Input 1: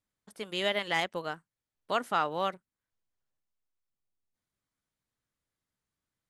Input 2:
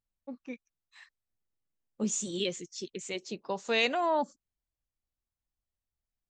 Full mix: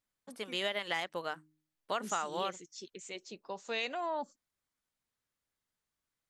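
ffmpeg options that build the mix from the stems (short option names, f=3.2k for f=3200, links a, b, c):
-filter_complex "[0:a]bandreject=f=154.6:t=h:w=4,bandreject=f=309.2:t=h:w=4,volume=0dB[a];[1:a]volume=-6dB[b];[a][b]amix=inputs=2:normalize=0,lowshelf=f=310:g=-7,acompressor=threshold=-30dB:ratio=6"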